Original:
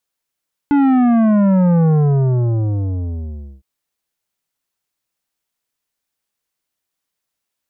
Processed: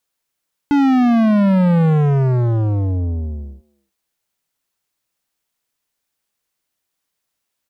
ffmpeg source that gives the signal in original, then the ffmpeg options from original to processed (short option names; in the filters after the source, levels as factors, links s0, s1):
-f lavfi -i "aevalsrc='0.282*clip((2.91-t)/1.75,0,1)*tanh(3.55*sin(2*PI*290*2.91/log(65/290)*(exp(log(65/290)*t/2.91)-1)))/tanh(3.55)':d=2.91:s=44100"
-filter_complex "[0:a]asplit=2[s0][s1];[s1]adelay=300,highpass=300,lowpass=3400,asoftclip=type=hard:threshold=0.112,volume=0.126[s2];[s0][s2]amix=inputs=2:normalize=0,asplit=2[s3][s4];[s4]aeval=exprs='0.0891*(abs(mod(val(0)/0.0891+3,4)-2)-1)':c=same,volume=0.355[s5];[s3][s5]amix=inputs=2:normalize=0"